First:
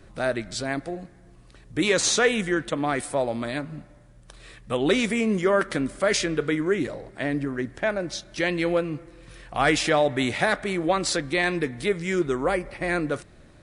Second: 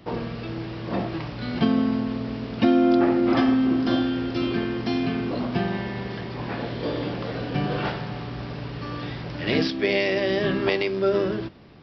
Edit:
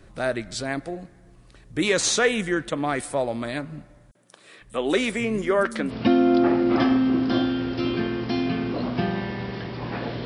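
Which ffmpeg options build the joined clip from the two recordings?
-filter_complex "[0:a]asettb=1/sr,asplit=3[a][b][c];[a]atrim=end=4.114[d];[b]atrim=start=4.11:end=5.92,asetpts=PTS-STARTPTS,afade=t=in:d=0.004:c=qsin,afade=t=out:st=1.806:d=0.004:c=qsin,acrossover=split=180|5500[e][f][g];[f]adelay=40[h];[e]adelay=500[i];[i][h][g]amix=inputs=3:normalize=0,atrim=end_sample=79821[j];[c]atrim=start=5.916[k];[d][j]acrossfade=d=0.004:c1=hsin:c2=qsin[l];[l][k]acrossfade=d=0.004:c1=qsin:c2=hsin,apad=whole_dur=10.25,atrim=end=10.25,atrim=end=5.92,asetpts=PTS-STARTPTS[m];[1:a]atrim=start=2.43:end=6.82,asetpts=PTS-STARTPTS[n];[m][n]acrossfade=d=0.06:c1=tri:c2=tri"

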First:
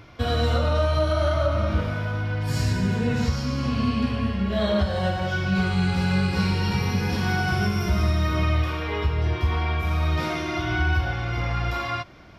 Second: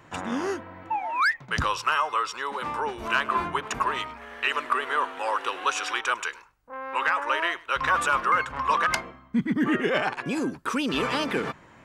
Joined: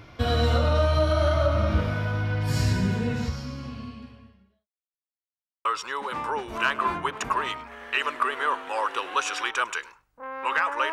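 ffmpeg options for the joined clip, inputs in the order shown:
-filter_complex "[0:a]apad=whole_dur=10.92,atrim=end=10.92,asplit=2[a][b];[a]atrim=end=4.68,asetpts=PTS-STARTPTS,afade=t=out:st=2.73:d=1.95:c=qua[c];[b]atrim=start=4.68:end=5.65,asetpts=PTS-STARTPTS,volume=0[d];[1:a]atrim=start=2.15:end=7.42,asetpts=PTS-STARTPTS,afade=t=in:d=0.004:c=hsin[e];[c][d][e]concat=n=3:v=0:a=1"

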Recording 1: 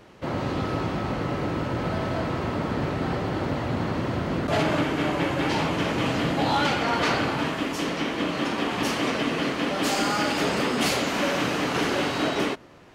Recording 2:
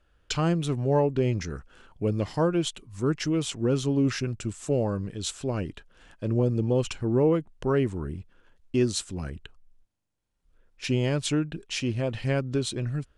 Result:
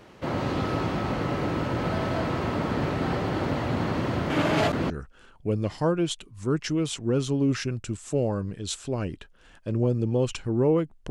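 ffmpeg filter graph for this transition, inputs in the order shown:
-filter_complex "[0:a]apad=whole_dur=11.1,atrim=end=11.1,asplit=2[a][b];[a]atrim=end=4.302[c];[b]atrim=start=4.298:end=4.902,asetpts=PTS-STARTPTS,areverse[d];[1:a]atrim=start=1.458:end=7.66[e];[c][d]acrossfade=d=0.004:c1=hsin:c2=hsin[f];[f][e]acrossfade=d=0.004:c1=hsin:c2=hsin"

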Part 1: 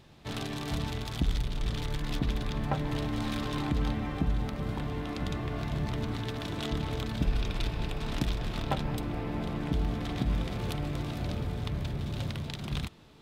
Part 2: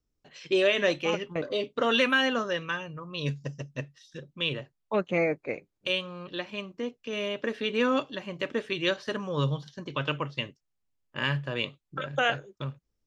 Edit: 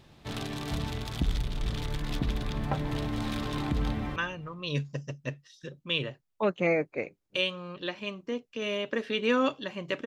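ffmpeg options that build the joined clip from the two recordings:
-filter_complex "[0:a]apad=whole_dur=10.06,atrim=end=10.06,atrim=end=4.162[a];[1:a]atrim=start=2.668:end=8.57[b];[a][b]acrossfade=d=0.004:c1=hsin:c2=hsin,asplit=2[c][d];[d]afade=t=in:st=3.9:d=0.01,afade=t=out:st=4.16:d=0.01,aecho=0:1:190|380|570|760:0.177828|0.0711312|0.0284525|0.011381[e];[c][e]amix=inputs=2:normalize=0"

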